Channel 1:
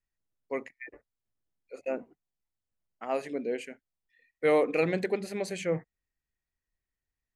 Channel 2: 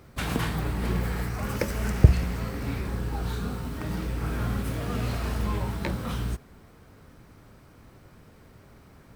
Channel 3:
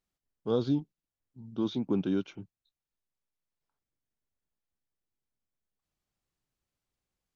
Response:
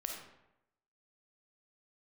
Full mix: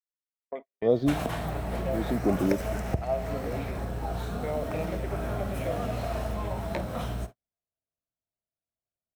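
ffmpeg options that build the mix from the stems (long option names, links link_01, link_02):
-filter_complex "[0:a]afwtdn=0.00708,acompressor=threshold=-33dB:ratio=5,volume=-8dB,asplit=3[link_01][link_02][link_03];[link_02]volume=-4.5dB[link_04];[1:a]bandreject=frequency=4700:width=14,acompressor=threshold=-29dB:ratio=3,adelay=900,volume=-3dB,asplit=2[link_05][link_06];[link_06]volume=-11dB[link_07];[2:a]lowshelf=frequency=740:width_type=q:width=1.5:gain=6.5,adelay=350,volume=-5dB[link_08];[link_03]apad=whole_len=339639[link_09];[link_08][link_09]sidechaincompress=threshold=-50dB:ratio=8:attack=32:release=170[link_10];[3:a]atrim=start_sample=2205[link_11];[link_04][link_07]amix=inputs=2:normalize=0[link_12];[link_12][link_11]afir=irnorm=-1:irlink=0[link_13];[link_01][link_05][link_10][link_13]amix=inputs=4:normalize=0,equalizer=frequency=660:width=2.9:gain=15,agate=range=-50dB:threshold=-37dB:ratio=16:detection=peak"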